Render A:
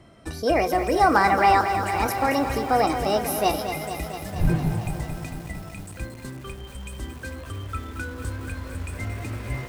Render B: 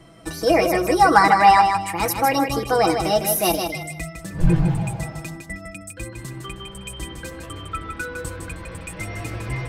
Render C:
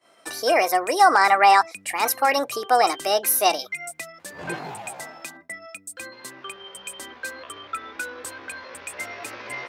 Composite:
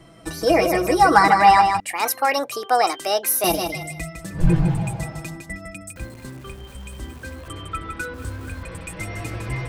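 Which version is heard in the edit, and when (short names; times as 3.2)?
B
1.8–3.44 from C
5.96–7.48 from A
8.14–8.63 from A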